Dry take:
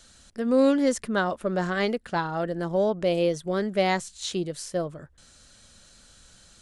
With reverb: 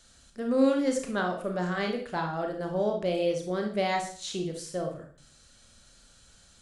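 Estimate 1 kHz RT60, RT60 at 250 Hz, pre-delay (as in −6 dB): 0.45 s, 0.60 s, 27 ms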